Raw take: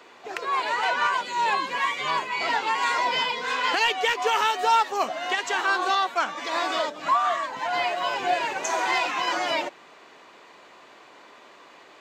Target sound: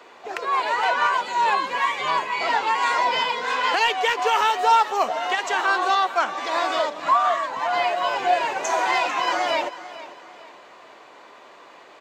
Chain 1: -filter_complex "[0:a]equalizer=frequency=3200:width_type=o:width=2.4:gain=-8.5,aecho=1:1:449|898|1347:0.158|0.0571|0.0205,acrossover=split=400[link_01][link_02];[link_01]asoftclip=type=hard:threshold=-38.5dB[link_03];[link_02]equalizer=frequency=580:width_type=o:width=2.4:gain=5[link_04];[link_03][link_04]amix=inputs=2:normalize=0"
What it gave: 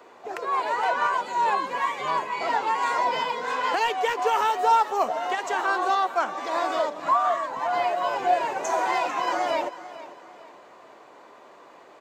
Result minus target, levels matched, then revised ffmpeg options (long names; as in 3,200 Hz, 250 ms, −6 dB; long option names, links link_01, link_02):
4,000 Hz band −5.0 dB
-filter_complex "[0:a]aecho=1:1:449|898|1347:0.158|0.0571|0.0205,acrossover=split=400[link_01][link_02];[link_01]asoftclip=type=hard:threshold=-38.5dB[link_03];[link_02]equalizer=frequency=580:width_type=o:width=2.4:gain=5[link_04];[link_03][link_04]amix=inputs=2:normalize=0"